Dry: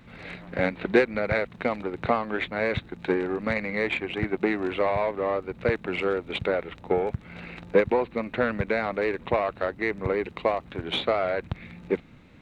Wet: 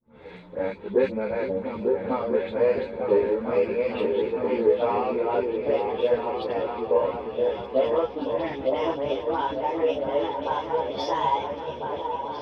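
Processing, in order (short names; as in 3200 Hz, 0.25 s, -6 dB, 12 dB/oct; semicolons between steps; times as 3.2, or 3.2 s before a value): gliding pitch shift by +7.5 st starting unshifted; expander -41 dBFS; bell 300 Hz +3.5 dB 1.3 oct; harmonic-percussive split percussive -9 dB; low shelf 72 Hz +7 dB; small resonant body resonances 480/920/3400 Hz, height 14 dB, ringing for 25 ms; dispersion highs, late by 74 ms, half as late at 2200 Hz; on a send: repeats that get brighter 0.45 s, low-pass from 200 Hz, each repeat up 2 oct, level 0 dB; on the sum: ensemble effect; gain -2.5 dB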